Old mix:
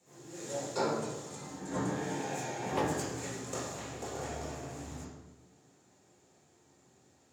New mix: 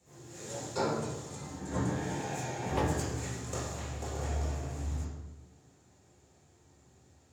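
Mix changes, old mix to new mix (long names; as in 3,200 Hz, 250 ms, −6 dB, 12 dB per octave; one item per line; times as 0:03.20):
speech: send −7.5 dB
master: remove high-pass filter 170 Hz 12 dB per octave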